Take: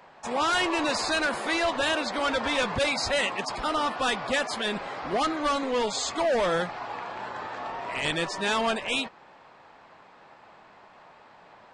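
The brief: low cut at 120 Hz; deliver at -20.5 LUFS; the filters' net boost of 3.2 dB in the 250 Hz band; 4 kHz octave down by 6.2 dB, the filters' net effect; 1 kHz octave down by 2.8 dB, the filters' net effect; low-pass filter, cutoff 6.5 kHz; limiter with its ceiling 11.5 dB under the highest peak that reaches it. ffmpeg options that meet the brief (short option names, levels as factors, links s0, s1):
-af "highpass=120,lowpass=6500,equalizer=f=250:t=o:g=4.5,equalizer=f=1000:t=o:g=-3.5,equalizer=f=4000:t=o:g=-7.5,volume=5.01,alimiter=limit=0.224:level=0:latency=1"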